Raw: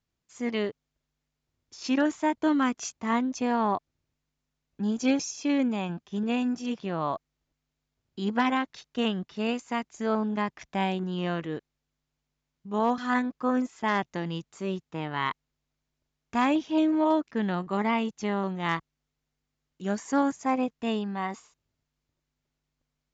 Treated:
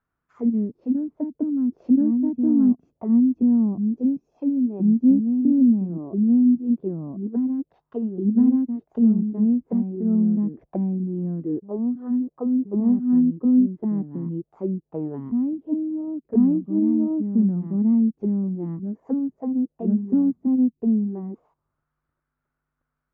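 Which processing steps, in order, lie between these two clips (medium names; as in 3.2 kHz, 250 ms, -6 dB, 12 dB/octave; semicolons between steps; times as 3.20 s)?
on a send: reverse echo 1028 ms -5 dB; on the sum: touch-sensitive low-pass 240–1400 Hz down, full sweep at -26.5 dBFS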